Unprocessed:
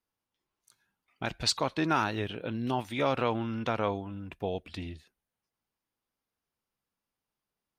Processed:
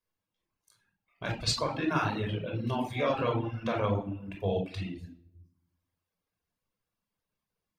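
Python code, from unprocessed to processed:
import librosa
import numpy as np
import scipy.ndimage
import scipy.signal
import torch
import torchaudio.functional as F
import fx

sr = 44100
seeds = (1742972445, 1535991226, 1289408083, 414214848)

p1 = fx.room_shoebox(x, sr, seeds[0], volume_m3=2500.0, walls='furnished', distance_m=5.4)
p2 = fx.rider(p1, sr, range_db=3, speed_s=0.5)
p3 = p1 + (p2 * 10.0 ** (-3.0 / 20.0))
p4 = fx.dereverb_blind(p3, sr, rt60_s=0.83)
y = p4 * 10.0 ** (-9.0 / 20.0)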